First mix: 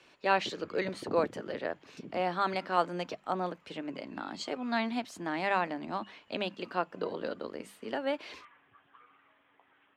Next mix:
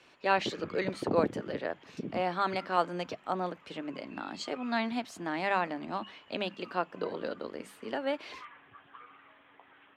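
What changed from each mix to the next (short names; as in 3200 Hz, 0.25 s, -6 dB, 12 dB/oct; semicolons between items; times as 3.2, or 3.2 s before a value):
background +7.5 dB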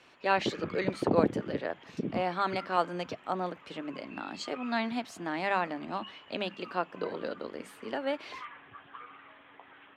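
background +4.5 dB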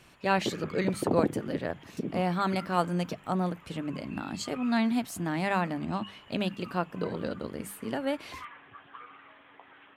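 speech: remove three-band isolator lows -18 dB, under 280 Hz, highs -19 dB, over 6100 Hz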